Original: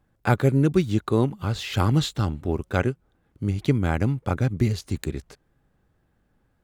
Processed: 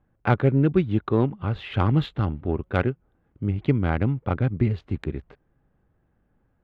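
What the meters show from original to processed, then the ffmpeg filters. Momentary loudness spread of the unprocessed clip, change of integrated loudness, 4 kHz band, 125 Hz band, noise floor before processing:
10 LU, 0.0 dB, −7.0 dB, 0.0 dB, −68 dBFS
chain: -af "adynamicsmooth=sensitivity=1:basefreq=2100,highshelf=frequency=4300:width_type=q:width=1.5:gain=-8.5"

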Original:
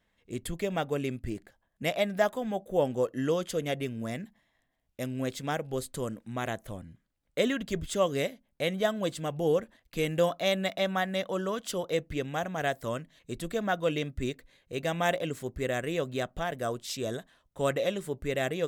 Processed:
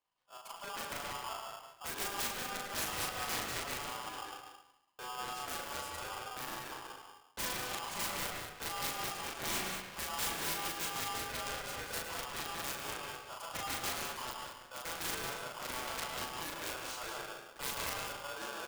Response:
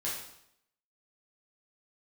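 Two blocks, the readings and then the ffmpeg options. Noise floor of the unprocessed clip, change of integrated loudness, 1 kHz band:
−76 dBFS, −7.0 dB, −4.0 dB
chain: -filter_complex "[0:a]aeval=exprs='if(lt(val(0),0),0.447*val(0),val(0))':channel_layout=same,dynaudnorm=framelen=210:gausssize=7:maxgain=8dB,aeval=exprs='0.562*(cos(1*acos(clip(val(0)/0.562,-1,1)))-cos(1*PI/2))+0.112*(cos(7*acos(clip(val(0)/0.562,-1,1)))-cos(7*PI/2))':channel_layout=same,aeval=exprs='(mod(13.3*val(0)+1,2)-1)/13.3':channel_layout=same,asplit=2[link_01][link_02];[link_02]adelay=38,volume=-2dB[link_03];[link_01][link_03]amix=inputs=2:normalize=0,aecho=1:1:106|191:0.299|0.447,asplit=2[link_04][link_05];[1:a]atrim=start_sample=2205,lowpass=2300,adelay=111[link_06];[link_05][link_06]afir=irnorm=-1:irlink=0,volume=-6.5dB[link_07];[link_04][link_07]amix=inputs=2:normalize=0,aeval=exprs='val(0)*sgn(sin(2*PI*1000*n/s))':channel_layout=same,volume=-6dB"

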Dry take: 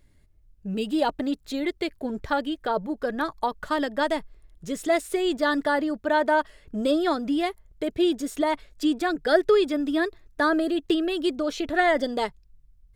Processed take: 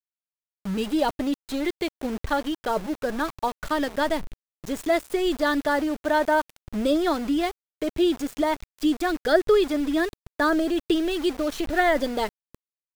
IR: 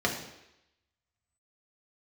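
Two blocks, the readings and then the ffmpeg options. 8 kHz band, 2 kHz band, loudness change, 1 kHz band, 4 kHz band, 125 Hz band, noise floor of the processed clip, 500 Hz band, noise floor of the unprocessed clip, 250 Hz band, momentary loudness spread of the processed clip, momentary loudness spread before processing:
+2.0 dB, 0.0 dB, +0.5 dB, 0.0 dB, +0.5 dB, can't be measured, below −85 dBFS, +0.5 dB, −58 dBFS, +1.0 dB, 9 LU, 9 LU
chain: -af "lowshelf=frequency=96:gain=10.5,aeval=exprs='val(0)*gte(abs(val(0)),0.0224)':channel_layout=same"

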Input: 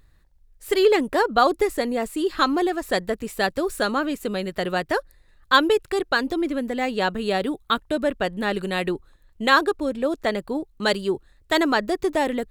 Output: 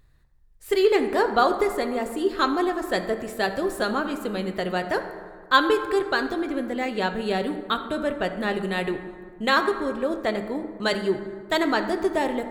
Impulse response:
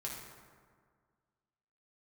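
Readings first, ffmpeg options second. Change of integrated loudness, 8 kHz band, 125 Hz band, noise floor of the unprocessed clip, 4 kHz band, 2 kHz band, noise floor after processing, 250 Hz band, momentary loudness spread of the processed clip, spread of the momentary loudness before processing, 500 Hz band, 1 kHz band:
−1.5 dB, −4.0 dB, −0.5 dB, −57 dBFS, −3.0 dB, −2.0 dB, −49 dBFS, −2.0 dB, 8 LU, 8 LU, −1.0 dB, −1.5 dB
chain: -filter_complex "[0:a]asplit=2[link_01][link_02];[link_02]highshelf=frequency=4800:gain=-6.5[link_03];[1:a]atrim=start_sample=2205[link_04];[link_03][link_04]afir=irnorm=-1:irlink=0,volume=-1dB[link_05];[link_01][link_05]amix=inputs=2:normalize=0,volume=-6dB"

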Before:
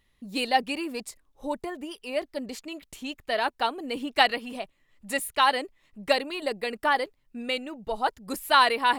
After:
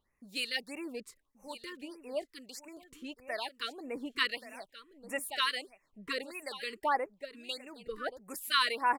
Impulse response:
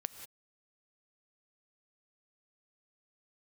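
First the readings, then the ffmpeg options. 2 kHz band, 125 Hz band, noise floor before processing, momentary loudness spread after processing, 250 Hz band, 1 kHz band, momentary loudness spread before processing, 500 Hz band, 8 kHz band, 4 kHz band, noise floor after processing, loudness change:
−7.5 dB, can't be measured, −69 dBFS, 17 LU, −10.5 dB, −10.5 dB, 15 LU, −10.5 dB, −6.0 dB, −5.5 dB, −77 dBFS, −8.5 dB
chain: -filter_complex "[0:a]lowshelf=frequency=290:gain=-8.5,acrossover=split=1700[link_01][link_02];[link_01]aeval=exprs='val(0)*(1-0.7/2+0.7/2*cos(2*PI*1*n/s))':channel_layout=same[link_03];[link_02]aeval=exprs='val(0)*(1-0.7/2-0.7/2*cos(2*PI*1*n/s))':channel_layout=same[link_04];[link_03][link_04]amix=inputs=2:normalize=0,aecho=1:1:1129:0.2,afftfilt=real='re*(1-between(b*sr/1024,670*pow(4000/670,0.5+0.5*sin(2*PI*1.6*pts/sr))/1.41,670*pow(4000/670,0.5+0.5*sin(2*PI*1.6*pts/sr))*1.41))':imag='im*(1-between(b*sr/1024,670*pow(4000/670,0.5+0.5*sin(2*PI*1.6*pts/sr))/1.41,670*pow(4000/670,0.5+0.5*sin(2*PI*1.6*pts/sr))*1.41))':win_size=1024:overlap=0.75,volume=-3dB"

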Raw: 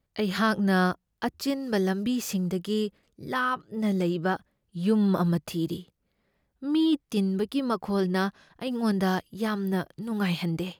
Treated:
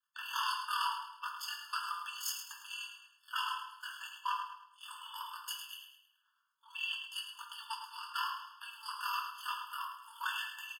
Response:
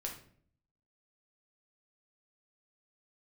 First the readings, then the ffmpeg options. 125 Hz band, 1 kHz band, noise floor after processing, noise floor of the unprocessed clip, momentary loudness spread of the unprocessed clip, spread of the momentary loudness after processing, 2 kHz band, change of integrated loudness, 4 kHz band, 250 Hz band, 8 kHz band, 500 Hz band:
below −40 dB, −5.5 dB, −77 dBFS, −77 dBFS, 9 LU, 12 LU, −8.0 dB, −12.0 dB, −2.0 dB, below −40 dB, −3.0 dB, below −40 dB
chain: -filter_complex "[0:a]acrossover=split=1000[link_01][link_02];[link_01]aeval=exprs='val(0)*(1-0.5/2+0.5/2*cos(2*PI*9*n/s))':channel_layout=same[link_03];[link_02]aeval=exprs='val(0)*(1-0.5/2-0.5/2*cos(2*PI*9*n/s))':channel_layout=same[link_04];[link_03][link_04]amix=inputs=2:normalize=0,afreqshift=-490,acrossover=split=670|2000[link_05][link_06][link_07];[link_06]aeval=exprs='0.0188*(abs(mod(val(0)/0.0188+3,4)-2)-1)':channel_layout=same[link_08];[link_05][link_08][link_07]amix=inputs=3:normalize=0,aeval=exprs='val(0)*sin(2*PI*20*n/s)':channel_layout=same,aeval=exprs='0.178*(cos(1*acos(clip(val(0)/0.178,-1,1)))-cos(1*PI/2))+0.0631*(cos(2*acos(clip(val(0)/0.178,-1,1)))-cos(2*PI/2))':channel_layout=same,aecho=1:1:106|212|318|424:0.355|0.138|0.054|0.021[link_09];[1:a]atrim=start_sample=2205[link_10];[link_09][link_10]afir=irnorm=-1:irlink=0,afftfilt=real='re*eq(mod(floor(b*sr/1024/890),2),1)':imag='im*eq(mod(floor(b*sr/1024/890),2),1)':win_size=1024:overlap=0.75,volume=7dB"

